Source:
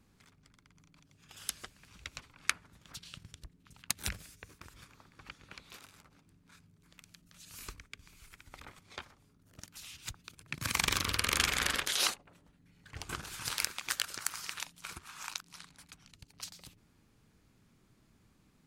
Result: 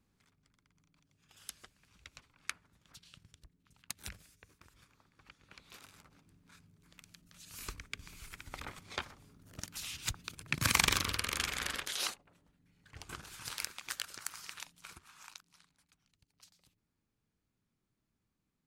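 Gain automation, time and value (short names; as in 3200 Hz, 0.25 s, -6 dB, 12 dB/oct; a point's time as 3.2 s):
5.36 s -9 dB
5.88 s -0.5 dB
7.49 s -0.5 dB
7.96 s +6 dB
10.63 s +6 dB
11.32 s -6 dB
14.8 s -6 dB
15.86 s -17 dB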